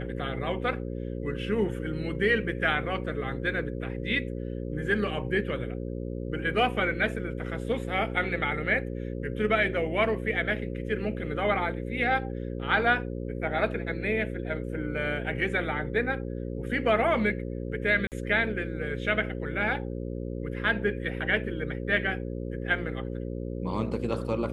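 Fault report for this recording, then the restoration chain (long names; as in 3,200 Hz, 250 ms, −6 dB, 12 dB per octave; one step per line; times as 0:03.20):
mains buzz 60 Hz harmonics 9 −34 dBFS
0:18.07–0:18.12: drop-out 48 ms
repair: hum removal 60 Hz, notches 9
repair the gap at 0:18.07, 48 ms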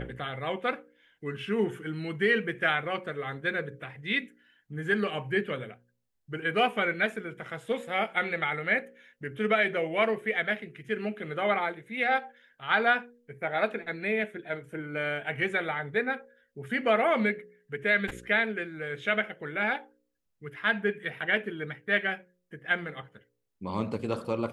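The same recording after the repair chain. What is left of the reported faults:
none of them is left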